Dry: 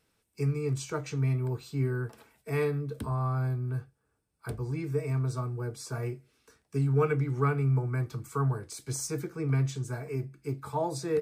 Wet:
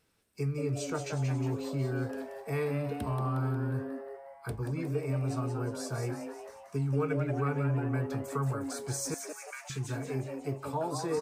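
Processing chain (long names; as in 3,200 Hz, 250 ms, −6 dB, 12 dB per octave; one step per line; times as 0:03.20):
0:09.14–0:09.70: inverse Chebyshev high-pass filter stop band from 210 Hz, stop band 80 dB
downward compressor 2 to 1, threshold −31 dBFS, peak gain reduction 6 dB
on a send: echo with shifted repeats 180 ms, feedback 54%, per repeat +140 Hz, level −7 dB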